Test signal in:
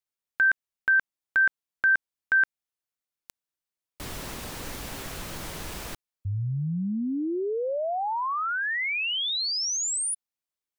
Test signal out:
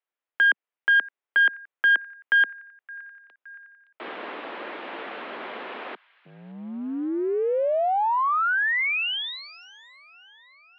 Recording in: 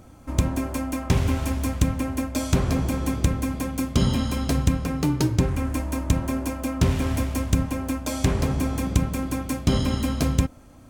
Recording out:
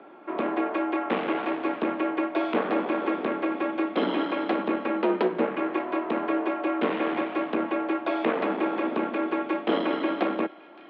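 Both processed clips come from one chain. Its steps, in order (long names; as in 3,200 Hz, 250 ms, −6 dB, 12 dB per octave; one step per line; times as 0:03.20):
on a send: delay with a high-pass on its return 568 ms, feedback 59%, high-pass 1,500 Hz, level −21.5 dB
on the sum: asymmetric clip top −26 dBFS
single-sideband voice off tune +59 Hz 150–3,600 Hz
three-way crossover with the lows and the highs turned down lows −18 dB, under 310 Hz, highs −15 dB, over 2,900 Hz
level +6 dB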